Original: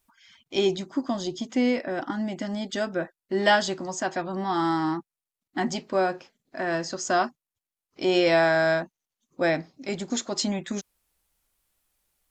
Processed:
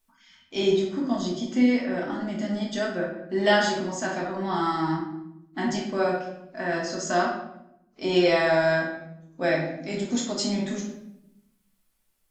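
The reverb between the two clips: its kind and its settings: simulated room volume 230 m³, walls mixed, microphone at 1.5 m; trim -4.5 dB

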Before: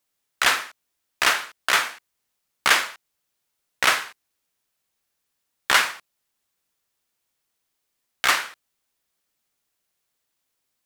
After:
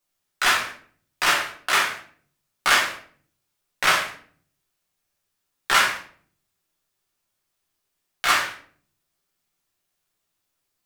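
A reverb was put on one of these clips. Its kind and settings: simulated room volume 52 m³, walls mixed, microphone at 1 m; trim -4.5 dB

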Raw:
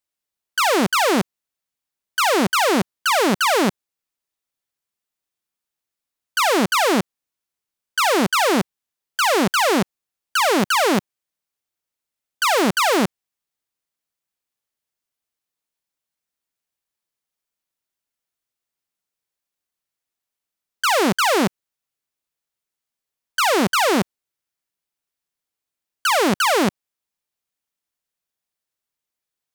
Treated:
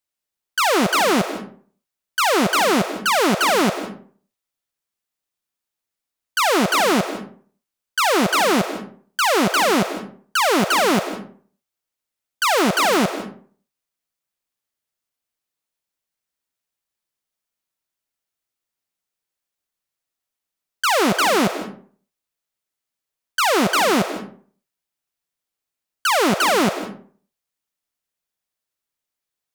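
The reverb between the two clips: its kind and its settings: algorithmic reverb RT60 0.47 s, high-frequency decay 0.6×, pre-delay 120 ms, DRR 9 dB

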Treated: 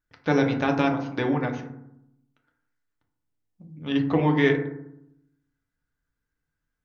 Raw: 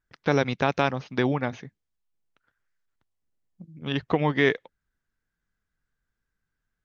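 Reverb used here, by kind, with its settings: FDN reverb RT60 0.78 s, low-frequency decay 1.4×, high-frequency decay 0.35×, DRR 1.5 dB; trim -3 dB

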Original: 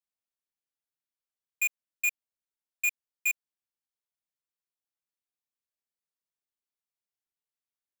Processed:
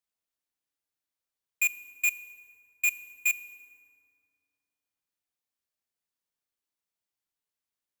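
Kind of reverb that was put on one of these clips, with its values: FDN reverb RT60 2.4 s, low-frequency decay 1.25×, high-frequency decay 0.55×, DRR 12 dB; trim +2.5 dB

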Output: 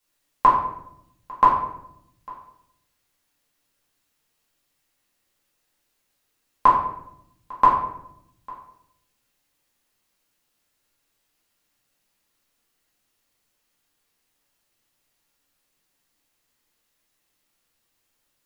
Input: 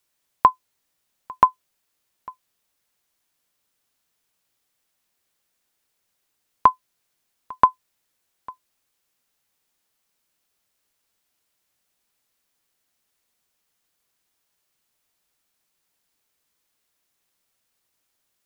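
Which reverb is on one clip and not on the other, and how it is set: simulated room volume 180 m³, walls mixed, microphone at 2.2 m; trim -5 dB

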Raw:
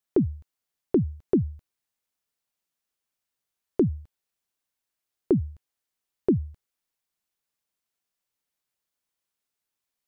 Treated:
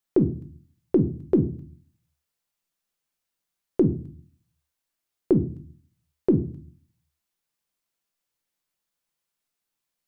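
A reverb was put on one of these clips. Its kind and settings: simulated room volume 260 m³, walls furnished, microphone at 0.79 m; trim +1 dB

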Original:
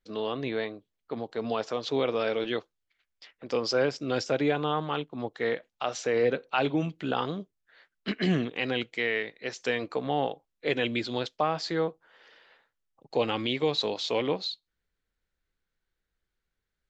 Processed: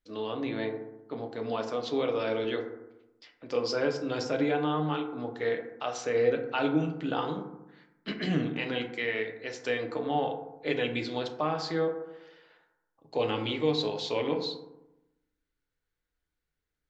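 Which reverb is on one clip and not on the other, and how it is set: FDN reverb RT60 0.93 s, low-frequency decay 1.2×, high-frequency decay 0.35×, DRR 3 dB; trim -4 dB

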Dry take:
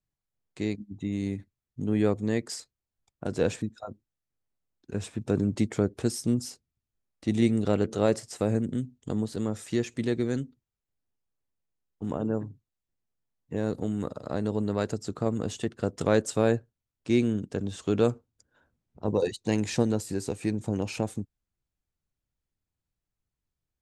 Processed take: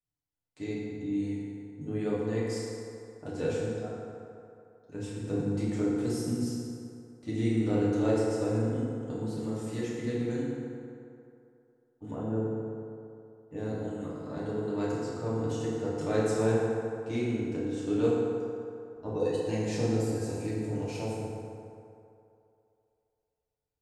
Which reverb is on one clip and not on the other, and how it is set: FDN reverb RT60 2.7 s, low-frequency decay 0.75×, high-frequency decay 0.5×, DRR -8.5 dB; trim -12.5 dB

